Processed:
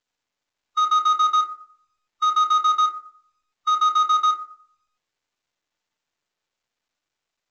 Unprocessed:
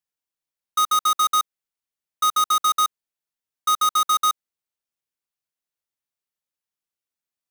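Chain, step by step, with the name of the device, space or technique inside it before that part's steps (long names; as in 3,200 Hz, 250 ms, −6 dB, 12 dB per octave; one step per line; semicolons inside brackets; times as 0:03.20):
feedback delay network reverb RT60 0.58 s, low-frequency decay 0.8×, high-frequency decay 0.35×, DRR 4 dB
harmonic and percussive parts rebalanced percussive −7 dB
telephone (band-pass filter 400–3,500 Hz; mu-law 128 kbit/s 16,000 Hz)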